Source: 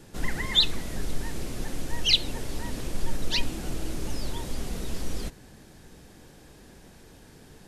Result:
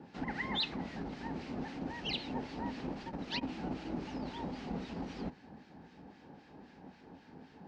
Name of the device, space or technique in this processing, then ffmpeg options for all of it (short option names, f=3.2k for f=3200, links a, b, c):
guitar amplifier with harmonic tremolo: -filter_complex "[0:a]acrossover=split=1400[a][b];[a]aeval=exprs='val(0)*(1-0.7/2+0.7/2*cos(2*PI*3.8*n/s))':c=same[c];[b]aeval=exprs='val(0)*(1-0.7/2-0.7/2*cos(2*PI*3.8*n/s))':c=same[d];[c][d]amix=inputs=2:normalize=0,asoftclip=type=tanh:threshold=-20dB,highpass=96,equalizer=f=120:t=q:w=4:g=-7,equalizer=f=180:t=q:w=4:g=5,equalizer=f=260:t=q:w=4:g=8,equalizer=f=830:t=q:w=4:g=10,equalizer=f=3.5k:t=q:w=4:g=-6,lowpass=f=4.2k:w=0.5412,lowpass=f=4.2k:w=1.3066,volume=-2dB"